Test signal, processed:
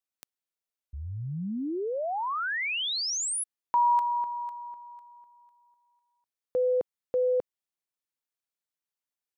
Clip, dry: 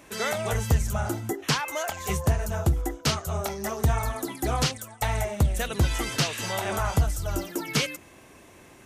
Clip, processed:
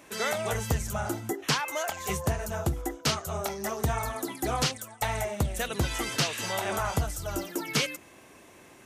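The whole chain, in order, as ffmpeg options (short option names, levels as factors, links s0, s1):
-af "lowshelf=f=100:g=-10,volume=0.891"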